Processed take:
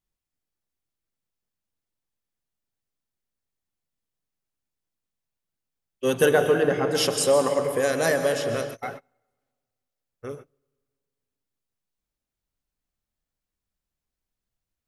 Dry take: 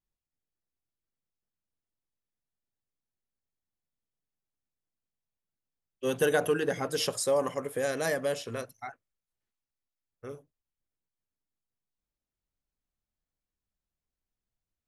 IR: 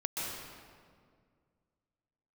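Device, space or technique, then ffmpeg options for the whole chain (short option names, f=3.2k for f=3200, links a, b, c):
keyed gated reverb: -filter_complex "[0:a]asettb=1/sr,asplit=3[a][b][c];[a]atrim=end=6.314[d];[b]atrim=start=6.31:end=6.95,asetpts=PTS-STARTPTS,afade=t=in:d=0.004:c=qsin,afade=t=out:st=0.636:d=0.004:c=qsin,aemphasis=mode=reproduction:type=75kf[e];[c]atrim=start=6.946[f];[d][e]acrossfade=d=0.004:c1=hsin:c2=qsin[g];[g][f]acrossfade=d=0.004:c1=qsin:c2=hsin,asplit=3[h][i][j];[1:a]atrim=start_sample=2205[k];[i][k]afir=irnorm=-1:irlink=0[l];[j]apad=whole_len=655995[m];[l][m]sidechaingate=range=-32dB:threshold=-48dB:ratio=16:detection=peak,volume=-6.5dB[n];[h][n]amix=inputs=2:normalize=0,volume=3.5dB"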